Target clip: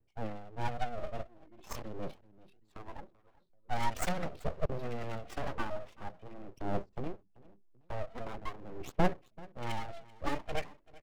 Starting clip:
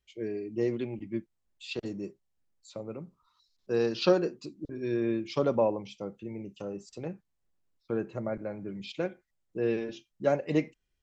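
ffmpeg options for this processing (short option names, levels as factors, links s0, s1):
-filter_complex "[0:a]asettb=1/sr,asplit=3[s0][s1][s2];[s0]atrim=end=5.454[s3];[s1]atrim=start=5.45:end=5.96,asetpts=PTS-STARTPTS,afade=t=in:d=0.004:c=qsin,afade=t=out:st=0.506:d=0.004:c=qsin,equalizer=f=81:w=0.64:g=-11[s4];[s2]atrim=start=5.956[s5];[s3][s4]acrossfade=d=0.004:c1=hsin:c2=qsin[s6];[s6][s5]acrossfade=d=0.004:c1=qsin:c2=hsin,acrossover=split=230|420|1100[s7][s8][s9][s10];[s9]acompressor=threshold=0.00355:ratio=6[s11];[s7][s8][s11][s10]amix=inputs=4:normalize=0,aphaser=in_gain=1:out_gain=1:delay=3.3:decay=0.8:speed=0.44:type=sinusoidal,asettb=1/sr,asplit=3[s12][s13][s14];[s12]atrim=end=0.954[s15];[s13]atrim=start=0.95:end=1.86,asetpts=PTS-STARTPTS,afade=t=in:d=0.004:c=qsin,afade=t=out:st=0.906:d=0.004:c=qsin,asplit=2[s16][s17];[s17]adelay=28,volume=0.794[s18];[s16][s18]amix=inputs=2:normalize=0,atrim=end_sample=40131[s19];[s14]atrim=start=1.856[s20];[s15][s19]acrossfade=d=0.004:c1=hsin:c2=qsin[s21];[s21][s20]acrossfade=d=0.004:c1=qsin:c2=hsin,adynamicsmooth=sensitivity=6:basefreq=890,aecho=1:1:386|772:0.0841|0.0236,aeval=exprs='abs(val(0))':c=same,volume=0.794"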